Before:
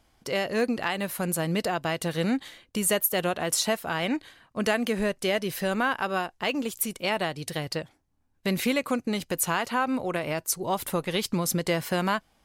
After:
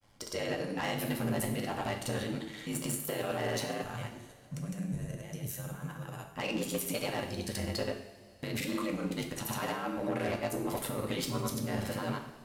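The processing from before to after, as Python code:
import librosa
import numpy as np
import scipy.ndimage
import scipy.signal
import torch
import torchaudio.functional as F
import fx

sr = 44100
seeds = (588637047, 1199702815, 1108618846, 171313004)

y = x * np.sin(2.0 * np.pi * 51.0 * np.arange(len(x)) / sr)
y = fx.over_compress(y, sr, threshold_db=-31.0, ratio=-0.5)
y = fx.spec_box(y, sr, start_s=3.82, length_s=2.59, low_hz=210.0, high_hz=5500.0, gain_db=-14)
y = fx.granulator(y, sr, seeds[0], grain_ms=100.0, per_s=20.0, spray_ms=100.0, spread_st=0)
y = 10.0 ** (-28.0 / 20.0) * np.tanh(y / 10.0 ** (-28.0 / 20.0))
y = fx.rev_double_slope(y, sr, seeds[1], early_s=0.68, late_s=3.5, knee_db=-18, drr_db=2.0)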